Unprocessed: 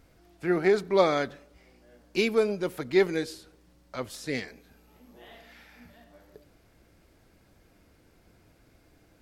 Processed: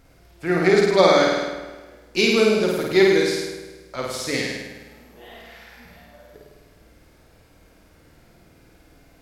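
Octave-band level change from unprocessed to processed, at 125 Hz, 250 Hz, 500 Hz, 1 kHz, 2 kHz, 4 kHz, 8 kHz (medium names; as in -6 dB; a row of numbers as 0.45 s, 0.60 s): +8.5 dB, +8.0 dB, +8.0 dB, +8.5 dB, +10.0 dB, +13.0 dB, +13.0 dB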